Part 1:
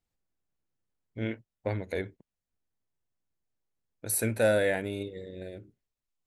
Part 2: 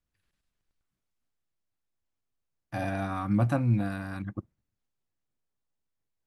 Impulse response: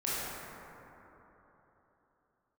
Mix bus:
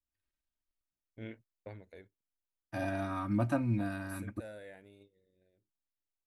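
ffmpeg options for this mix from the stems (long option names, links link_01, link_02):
-filter_complex "[0:a]agate=range=-33dB:threshold=-44dB:ratio=3:detection=peak,volume=-12dB,afade=type=out:start_time=1.37:duration=0.7:silence=0.266073[link_01];[1:a]aecho=1:1:3.2:0.59,volume=-5dB[link_02];[link_01][link_02]amix=inputs=2:normalize=0,agate=range=-9dB:threshold=-57dB:ratio=16:detection=peak"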